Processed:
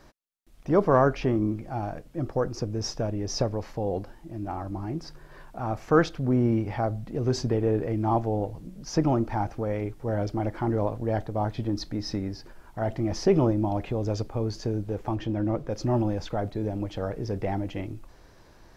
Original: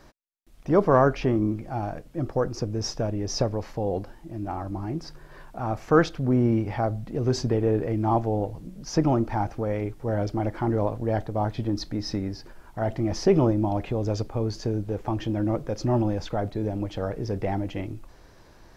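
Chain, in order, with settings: 15.15–15.71 s: treble shelf 5.7 kHz -8 dB; trim -1.5 dB

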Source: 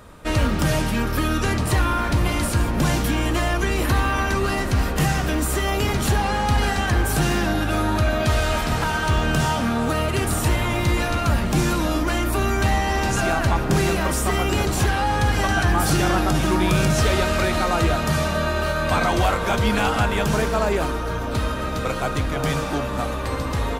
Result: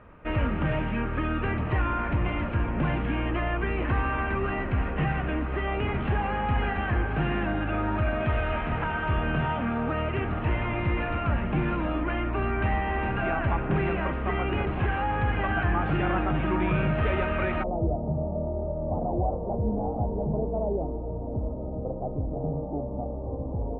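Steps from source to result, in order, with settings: steep low-pass 2.8 kHz 48 dB/octave, from 17.62 s 810 Hz; trim -6 dB

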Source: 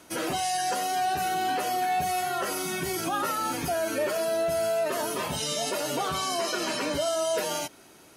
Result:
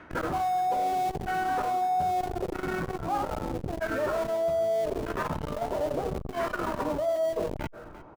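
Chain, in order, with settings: LFO low-pass saw down 0.79 Hz 380–1800 Hz; de-hum 65.34 Hz, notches 28; in parallel at -10 dB: Schmitt trigger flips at -31 dBFS; on the sum: bass shelf 100 Hz +12 dB; delay 349 ms -23.5 dB; reverse; compression 6:1, threshold -29 dBFS, peak gain reduction 12.5 dB; reverse; transformer saturation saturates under 270 Hz; trim +3.5 dB

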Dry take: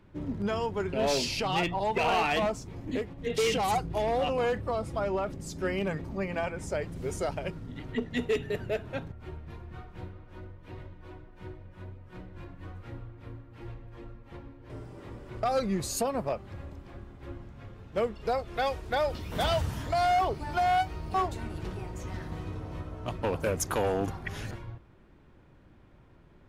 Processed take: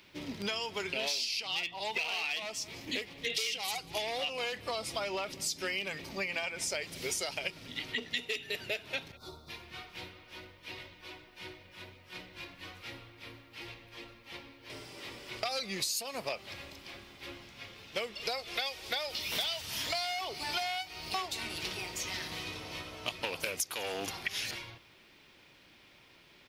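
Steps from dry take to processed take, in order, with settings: RIAA curve recording; echo from a far wall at 33 m, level -26 dB; time-frequency box 9.17–9.49 s, 1.5–3.4 kHz -23 dB; high-order bell 3.4 kHz +11 dB; compression 16:1, threshold -31 dBFS, peak gain reduction 20 dB

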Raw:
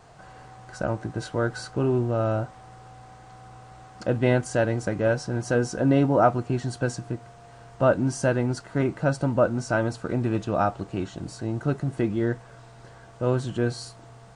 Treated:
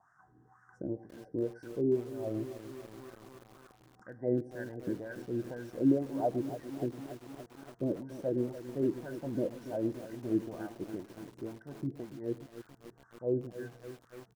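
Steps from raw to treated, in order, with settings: elliptic band-stop 1.8–5.5 kHz; peaking EQ 880 Hz -13.5 dB 2.5 oct; touch-sensitive phaser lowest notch 470 Hz, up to 1.3 kHz, full sweep at -32 dBFS; wah-wah 2 Hz 320–1500 Hz, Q 3.9; delay 107 ms -19.5 dB; bit-crushed delay 286 ms, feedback 80%, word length 9-bit, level -12 dB; trim +7.5 dB

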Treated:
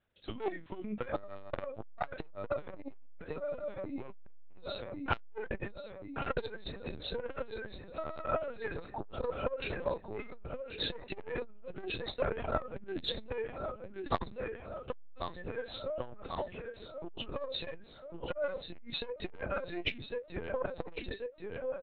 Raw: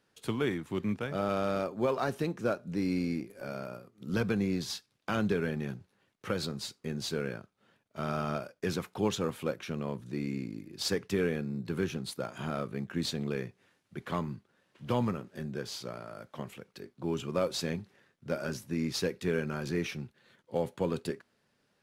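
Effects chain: high-pass 280 Hz 12 dB/octave; spectral noise reduction 13 dB; 8.32–9.23 s: low-pass 2.1 kHz 24 dB/octave; rotary cabinet horn 0.9 Hz, later 6.3 Hz, at 9.78 s; doubling 35 ms -12.5 dB; feedback delay 1087 ms, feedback 59%, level -10 dB; LPC vocoder at 8 kHz pitch kept; transformer saturation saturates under 840 Hz; trim +11 dB

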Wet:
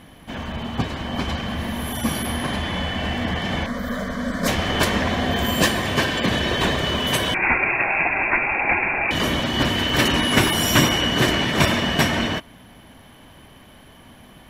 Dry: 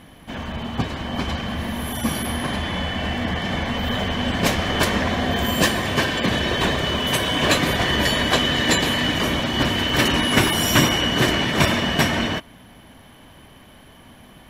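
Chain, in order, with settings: 3.66–4.48 s: static phaser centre 550 Hz, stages 8; 7.34–9.11 s: frequency inversion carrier 2.6 kHz

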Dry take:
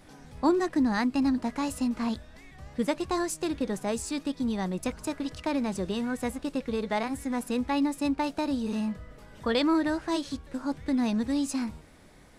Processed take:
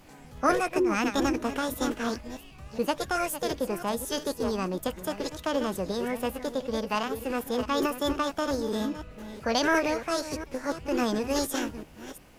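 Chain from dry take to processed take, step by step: chunks repeated in reverse 348 ms, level -12 dB; formant shift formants +5 st

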